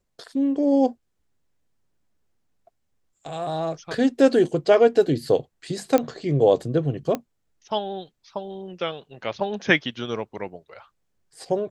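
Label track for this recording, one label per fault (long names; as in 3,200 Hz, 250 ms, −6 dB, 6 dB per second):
5.980000	5.980000	click −9 dBFS
7.150000	7.150000	click −13 dBFS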